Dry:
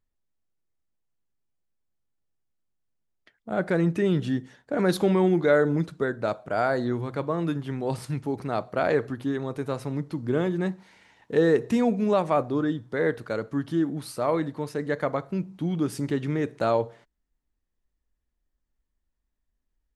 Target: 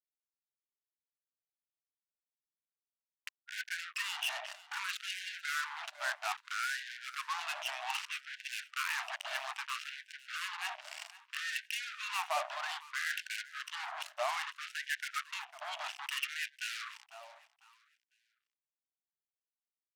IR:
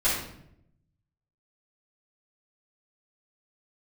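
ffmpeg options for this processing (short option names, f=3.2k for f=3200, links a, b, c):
-filter_complex "[0:a]aemphasis=mode=reproduction:type=cd,bandreject=f=430:w=12,areverse,acompressor=threshold=-36dB:ratio=6,areverse,lowpass=f=2.8k:t=q:w=12,asplit=2[a][b];[b]asoftclip=type=tanh:threshold=-38.5dB,volume=-5dB[c];[a][c]amix=inputs=2:normalize=0,aeval=exprs='val(0)+0.00316*(sin(2*PI*60*n/s)+sin(2*PI*2*60*n/s)/2+sin(2*PI*3*60*n/s)/3+sin(2*PI*4*60*n/s)/4+sin(2*PI*5*60*n/s)/5)':c=same,acrusher=bits=5:mix=0:aa=0.5,aecho=1:1:500|1000|1500:0.126|0.0415|0.0137,afftfilt=real='re*gte(b*sr/1024,570*pow(1500/570,0.5+0.5*sin(2*PI*0.62*pts/sr)))':imag='im*gte(b*sr/1024,570*pow(1500/570,0.5+0.5*sin(2*PI*0.62*pts/sr)))':win_size=1024:overlap=0.75,volume=4.5dB"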